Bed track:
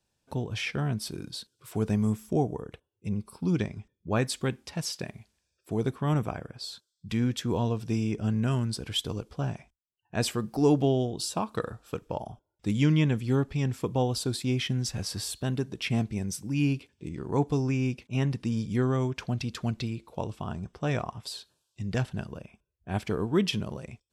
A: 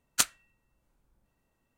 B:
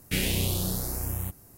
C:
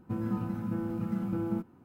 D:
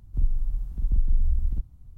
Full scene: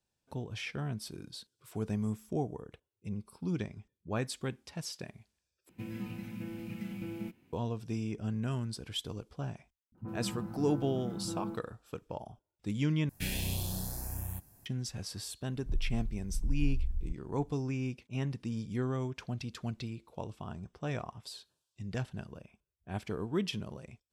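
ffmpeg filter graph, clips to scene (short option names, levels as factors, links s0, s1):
-filter_complex "[3:a]asplit=2[s0][s1];[0:a]volume=0.422[s2];[s0]highshelf=f=1700:t=q:w=3:g=11[s3];[s1]acrossover=split=220|2100[s4][s5][s6];[s5]adelay=30[s7];[s6]adelay=60[s8];[s4][s7][s8]amix=inputs=3:normalize=0[s9];[2:a]aecho=1:1:1.2:0.41[s10];[s2]asplit=3[s11][s12][s13];[s11]atrim=end=5.694[s14];[s3]atrim=end=1.84,asetpts=PTS-STARTPTS,volume=0.398[s15];[s12]atrim=start=7.526:end=13.094[s16];[s10]atrim=end=1.57,asetpts=PTS-STARTPTS,volume=0.355[s17];[s13]atrim=start=14.656[s18];[s9]atrim=end=1.84,asetpts=PTS-STARTPTS,volume=0.501,afade=t=in:d=0.004:c=hsin,afade=t=out:st=1.836:d=0.004:c=hsin,adelay=9920[s19];[4:a]atrim=end=1.97,asetpts=PTS-STARTPTS,volume=0.335,afade=t=in:d=0.004:c=hsin,afade=t=out:st=1.966:d=0.004:c=hsin,adelay=15520[s20];[s14][s15]acrossfade=d=0.004:c1=hsin:c2=hsin[s21];[s21][s16]acrossfade=d=0.004:c1=hsin:c2=hsin[s22];[s22][s17]acrossfade=d=0.004:c1=hsin:c2=hsin[s23];[s23][s18]acrossfade=d=0.004:c1=hsin:c2=hsin[s24];[s24][s19][s20]amix=inputs=3:normalize=0"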